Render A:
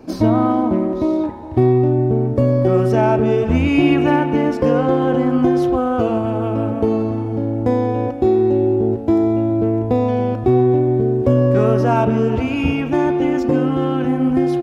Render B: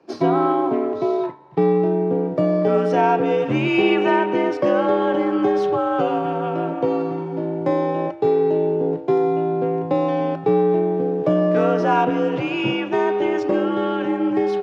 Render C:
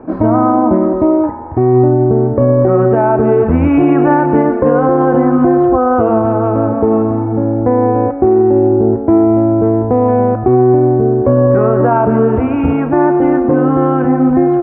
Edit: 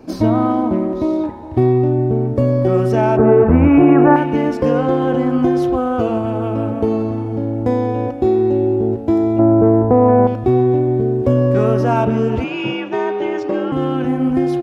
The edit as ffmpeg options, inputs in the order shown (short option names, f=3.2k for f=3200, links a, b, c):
-filter_complex "[2:a]asplit=2[a][b];[0:a]asplit=4[c][d][e][f];[c]atrim=end=3.172[g];[a]atrim=start=3.168:end=4.162[h];[d]atrim=start=4.158:end=9.392[i];[b]atrim=start=9.388:end=10.272[j];[e]atrim=start=10.268:end=12.442[k];[1:a]atrim=start=12.438:end=13.722[l];[f]atrim=start=13.718[m];[g][h]acrossfade=d=0.004:c1=hsin:c2=hsin[n];[n][i]acrossfade=d=0.004:c1=hsin:c2=hsin[o];[o][j]acrossfade=d=0.004:c1=hsin:c2=hsin[p];[p][k]acrossfade=d=0.004:c1=hsin:c2=hsin[q];[q][l]acrossfade=d=0.004:c1=hsin:c2=hsin[r];[r][m]acrossfade=d=0.004:c1=hsin:c2=hsin"